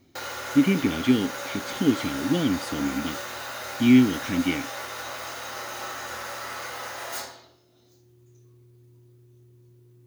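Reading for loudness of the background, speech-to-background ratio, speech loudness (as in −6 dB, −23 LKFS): −33.5 LKFS, 9.5 dB, −24.0 LKFS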